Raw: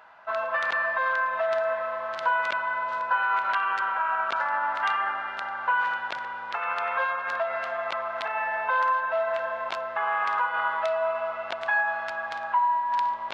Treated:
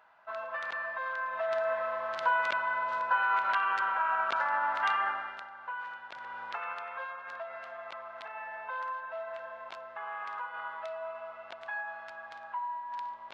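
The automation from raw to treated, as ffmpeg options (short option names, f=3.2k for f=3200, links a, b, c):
-af "volume=6.5dB,afade=t=in:st=1.15:d=0.67:silence=0.446684,afade=t=out:st=5.07:d=0.41:silence=0.266073,afade=t=in:st=6.1:d=0.32:silence=0.334965,afade=t=out:st=6.42:d=0.44:silence=0.398107"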